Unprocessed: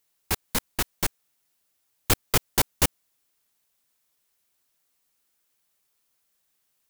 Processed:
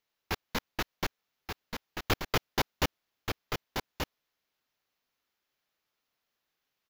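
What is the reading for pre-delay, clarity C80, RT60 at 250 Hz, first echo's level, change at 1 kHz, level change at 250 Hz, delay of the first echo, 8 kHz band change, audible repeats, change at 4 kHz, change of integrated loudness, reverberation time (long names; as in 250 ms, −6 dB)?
no reverb audible, no reverb audible, no reverb audible, −6.0 dB, −2.0 dB, −3.5 dB, 1,181 ms, −14.0 dB, 1, −4.5 dB, −9.5 dB, no reverb audible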